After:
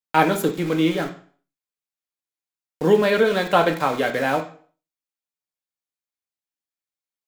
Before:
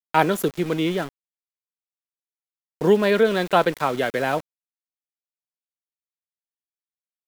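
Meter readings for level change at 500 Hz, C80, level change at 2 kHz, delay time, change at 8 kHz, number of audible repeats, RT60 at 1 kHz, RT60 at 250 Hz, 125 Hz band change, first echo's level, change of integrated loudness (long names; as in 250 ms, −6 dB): +0.5 dB, 15.5 dB, +2.0 dB, no echo audible, +1.0 dB, no echo audible, 0.45 s, 0.50 s, +1.0 dB, no echo audible, +1.0 dB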